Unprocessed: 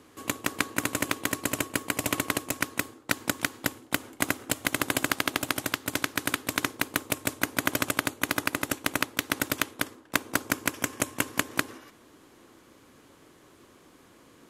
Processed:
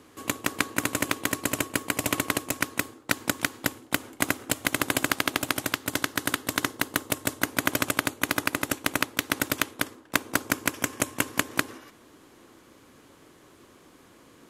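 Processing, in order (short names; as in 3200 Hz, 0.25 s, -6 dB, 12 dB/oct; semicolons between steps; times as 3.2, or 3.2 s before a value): 5.89–7.44 notch 2400 Hz, Q 9.8; gain +1.5 dB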